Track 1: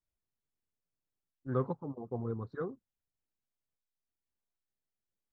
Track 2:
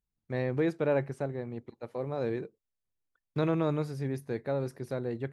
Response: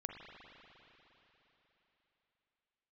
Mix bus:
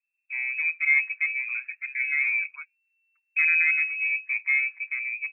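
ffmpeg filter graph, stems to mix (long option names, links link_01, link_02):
-filter_complex "[0:a]acompressor=threshold=-35dB:ratio=6,volume=0dB[link_01];[1:a]lowpass=frequency=1000:width=0.5412,lowpass=frequency=1000:width=1.3066,aecho=1:1:5.2:1,dynaudnorm=framelen=310:gausssize=7:maxgain=5dB,volume=-0.5dB,asplit=2[link_02][link_03];[link_03]apad=whole_len=235009[link_04];[link_01][link_04]sidechaingate=range=-33dB:threshold=-51dB:ratio=16:detection=peak[link_05];[link_05][link_02]amix=inputs=2:normalize=0,lowpass=frequency=2300:width_type=q:width=0.5098,lowpass=frequency=2300:width_type=q:width=0.6013,lowpass=frequency=2300:width_type=q:width=0.9,lowpass=frequency=2300:width_type=q:width=2.563,afreqshift=-2700"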